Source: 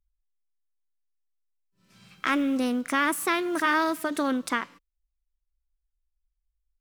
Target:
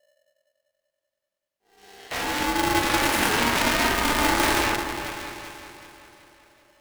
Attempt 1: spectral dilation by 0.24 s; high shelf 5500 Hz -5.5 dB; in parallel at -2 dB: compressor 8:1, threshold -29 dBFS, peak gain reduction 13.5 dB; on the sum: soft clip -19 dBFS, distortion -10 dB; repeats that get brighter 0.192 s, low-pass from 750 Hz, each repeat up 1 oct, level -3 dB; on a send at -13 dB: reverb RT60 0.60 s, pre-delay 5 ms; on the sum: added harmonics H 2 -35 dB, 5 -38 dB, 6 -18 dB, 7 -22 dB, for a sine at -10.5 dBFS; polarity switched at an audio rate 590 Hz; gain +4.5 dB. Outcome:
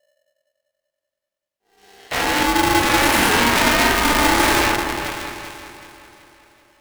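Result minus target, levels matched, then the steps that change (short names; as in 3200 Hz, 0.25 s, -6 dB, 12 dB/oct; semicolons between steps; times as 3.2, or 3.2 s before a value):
compressor: peak gain reduction -9 dB; soft clip: distortion -4 dB
change: compressor 8:1, threshold -39 dBFS, peak gain reduction 22.5 dB; change: soft clip -26 dBFS, distortion -6 dB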